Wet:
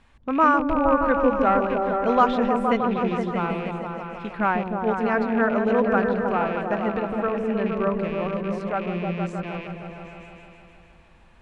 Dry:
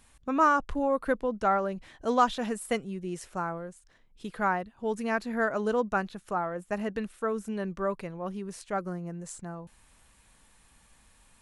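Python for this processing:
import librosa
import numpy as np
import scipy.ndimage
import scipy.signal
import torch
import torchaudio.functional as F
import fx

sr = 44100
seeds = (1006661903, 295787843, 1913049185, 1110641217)

p1 = fx.rattle_buzz(x, sr, strikes_db=-48.0, level_db=-32.0)
p2 = scipy.signal.sosfilt(scipy.signal.butter(2, 3000.0, 'lowpass', fs=sr, output='sos'), p1)
p3 = p2 + fx.echo_opening(p2, sr, ms=156, hz=400, octaves=1, feedback_pct=70, wet_db=0, dry=0)
y = p3 * 10.0 ** (4.5 / 20.0)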